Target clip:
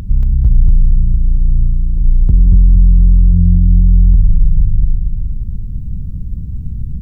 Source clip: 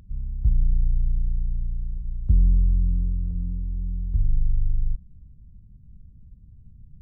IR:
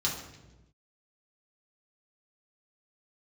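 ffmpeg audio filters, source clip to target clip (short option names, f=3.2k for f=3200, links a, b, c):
-filter_complex "[0:a]acompressor=threshold=-35dB:ratio=2,asplit=2[a][b];[b]aecho=0:1:230|460|690|920|1150|1380|1610|1840:0.562|0.326|0.189|0.11|0.0636|0.0369|0.0214|0.0124[c];[a][c]amix=inputs=2:normalize=0,alimiter=level_in=25dB:limit=-1dB:release=50:level=0:latency=1,volume=-1dB"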